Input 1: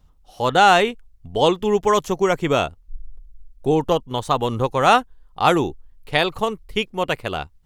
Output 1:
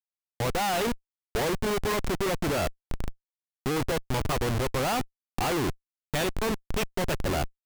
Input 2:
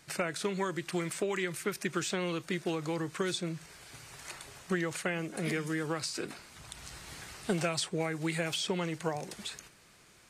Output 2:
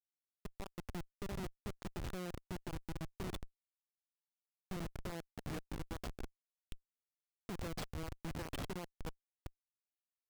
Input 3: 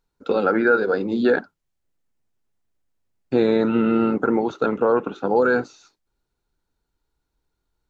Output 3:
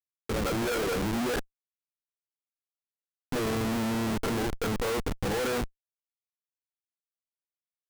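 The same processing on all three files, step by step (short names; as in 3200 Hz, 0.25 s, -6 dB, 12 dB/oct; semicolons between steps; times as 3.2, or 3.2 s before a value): opening faded in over 0.89 s; Schmitt trigger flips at -28 dBFS; gain -5 dB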